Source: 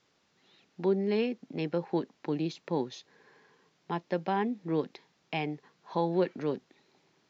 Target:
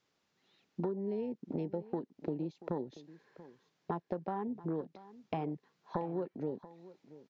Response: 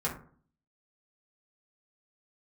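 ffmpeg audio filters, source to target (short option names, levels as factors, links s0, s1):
-af "afwtdn=0.0178,acompressor=threshold=0.00794:ratio=10,aecho=1:1:684:0.133,volume=2.66"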